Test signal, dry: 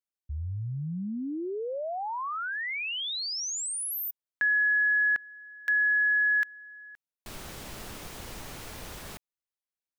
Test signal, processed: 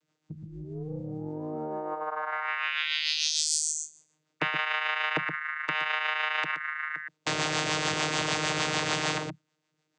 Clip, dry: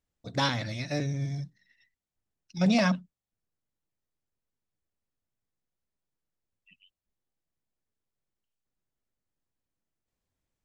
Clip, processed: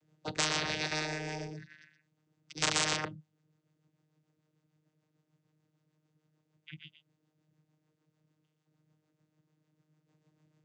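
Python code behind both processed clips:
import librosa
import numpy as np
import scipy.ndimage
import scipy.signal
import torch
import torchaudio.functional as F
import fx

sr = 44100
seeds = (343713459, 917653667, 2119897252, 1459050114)

p1 = fx.rotary(x, sr, hz=6.7)
p2 = (np.mod(10.0 ** (19.5 / 20.0) * p1 + 1.0, 2.0) - 1.0) / 10.0 ** (19.5 / 20.0)
p3 = p2 + fx.echo_single(p2, sr, ms=121, db=-10.5, dry=0)
p4 = fx.vocoder(p3, sr, bands=16, carrier='saw', carrier_hz=154.0)
p5 = fx.spectral_comp(p4, sr, ratio=10.0)
y = p5 * 10.0 ** (6.0 / 20.0)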